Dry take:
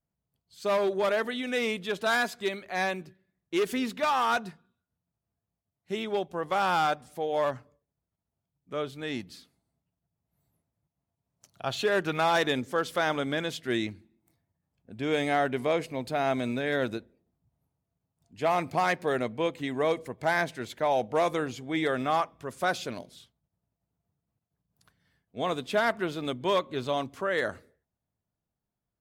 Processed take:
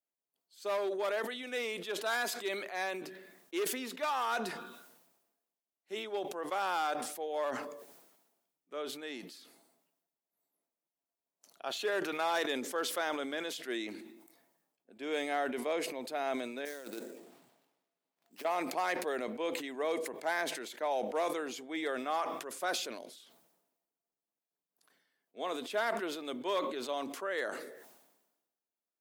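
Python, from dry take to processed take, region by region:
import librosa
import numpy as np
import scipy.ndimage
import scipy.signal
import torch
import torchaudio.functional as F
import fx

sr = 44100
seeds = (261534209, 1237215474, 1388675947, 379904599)

y = fx.chain(x, sr, fx.over_compress(threshold_db=-35.0, ratio=-0.5),
    fx.sample_hold(seeds[0], rate_hz=7900.0, jitter_pct=20), at=(16.65, 18.45))
y = scipy.signal.sosfilt(scipy.signal.butter(4, 290.0, 'highpass', fs=sr, output='sos'), y)
y = fx.high_shelf(y, sr, hz=9600.0, db=6.0)
y = fx.sustainer(y, sr, db_per_s=52.0)
y = y * 10.0 ** (-7.5 / 20.0)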